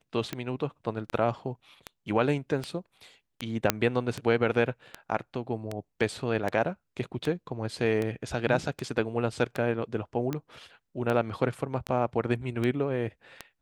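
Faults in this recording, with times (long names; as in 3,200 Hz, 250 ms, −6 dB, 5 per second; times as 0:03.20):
scratch tick 78 rpm −17 dBFS
0:03.70: click −5 dBFS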